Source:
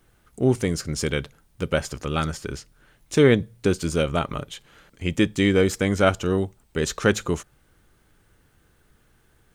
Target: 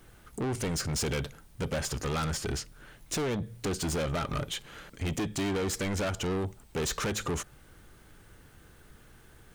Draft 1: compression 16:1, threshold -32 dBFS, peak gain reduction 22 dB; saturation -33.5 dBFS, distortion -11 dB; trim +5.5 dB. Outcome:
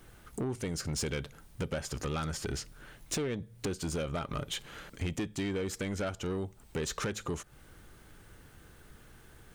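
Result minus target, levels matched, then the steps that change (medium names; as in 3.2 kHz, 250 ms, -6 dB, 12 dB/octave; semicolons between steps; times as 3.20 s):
compression: peak gain reduction +10.5 dB
change: compression 16:1, threshold -21 dBFS, peak gain reduction 11.5 dB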